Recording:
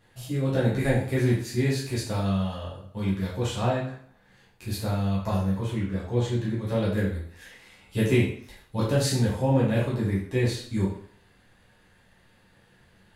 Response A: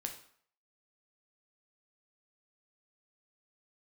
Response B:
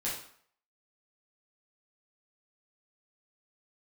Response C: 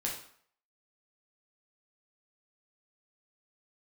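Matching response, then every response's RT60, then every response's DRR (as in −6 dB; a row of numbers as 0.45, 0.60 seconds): B; 0.60, 0.60, 0.60 seconds; 3.5, −7.5, −2.5 decibels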